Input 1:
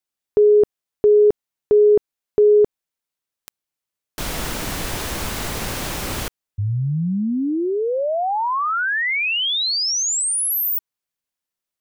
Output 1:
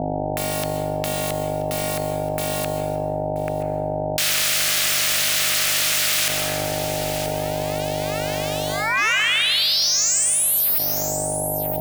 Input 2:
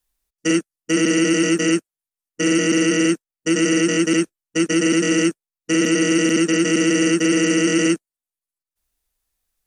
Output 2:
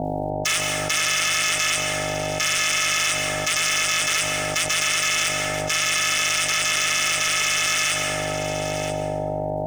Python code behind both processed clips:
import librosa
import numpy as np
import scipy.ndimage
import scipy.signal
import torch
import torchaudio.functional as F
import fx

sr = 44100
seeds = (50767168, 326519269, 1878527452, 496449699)

p1 = fx.law_mismatch(x, sr, coded='A')
p2 = scipy.signal.sosfilt(scipy.signal.ellip(4, 1.0, 40, 1900.0, 'highpass', fs=sr, output='sos'), p1)
p3 = fx.rider(p2, sr, range_db=10, speed_s=0.5)
p4 = p2 + F.gain(torch.from_numpy(p3), 2.0).numpy()
p5 = fx.add_hum(p4, sr, base_hz=50, snr_db=14)
p6 = p5 * np.sin(2.0 * np.pi * 440.0 * np.arange(len(p5)) / sr)
p7 = np.clip(10.0 ** (17.5 / 20.0) * p6, -1.0, 1.0) / 10.0 ** (17.5 / 20.0)
p8 = p7 * np.sin(2.0 * np.pi * 230.0 * np.arange(len(p7)) / sr)
p9 = p8 + fx.echo_single(p8, sr, ms=979, db=-20.0, dry=0)
p10 = fx.rev_plate(p9, sr, seeds[0], rt60_s=1.5, hf_ratio=0.55, predelay_ms=115, drr_db=7.0)
p11 = fx.env_flatten(p10, sr, amount_pct=70)
y = F.gain(torch.from_numpy(p11), 3.5).numpy()